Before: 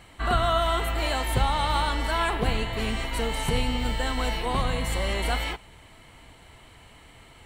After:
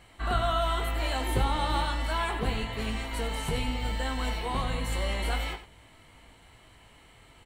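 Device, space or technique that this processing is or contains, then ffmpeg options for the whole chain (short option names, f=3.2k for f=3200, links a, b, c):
slapback doubling: -filter_complex "[0:a]asettb=1/sr,asplit=3[a][b][c];[a]atrim=end=1.204[d];[b]atrim=start=1.2:end=1.85,asetpts=PTS-STARTPTS,afade=t=in:d=0.004:c=qsin,afade=t=out:st=0.646:d=0.004:c=qsin,equalizer=f=340:w=2:g=10[e];[c]atrim=start=1.846[f];[d][e]acrossfade=d=0.004:c1=hsin:c2=qsin[g];[g][f]acrossfade=d=0.004:c1=qsin:c2=hsin,asplit=3[h][i][j];[i]adelay=19,volume=-6.5dB[k];[j]adelay=95,volume=-11.5dB[l];[h][k][l]amix=inputs=3:normalize=0,volume=-5.5dB"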